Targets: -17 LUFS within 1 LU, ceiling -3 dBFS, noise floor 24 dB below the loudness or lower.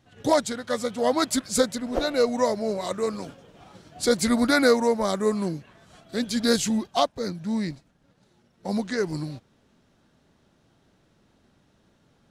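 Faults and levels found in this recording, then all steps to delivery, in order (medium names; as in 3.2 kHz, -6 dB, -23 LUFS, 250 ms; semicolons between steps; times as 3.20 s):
loudness -25.0 LUFS; peak level -7.5 dBFS; loudness target -17.0 LUFS
-> trim +8 dB; peak limiter -3 dBFS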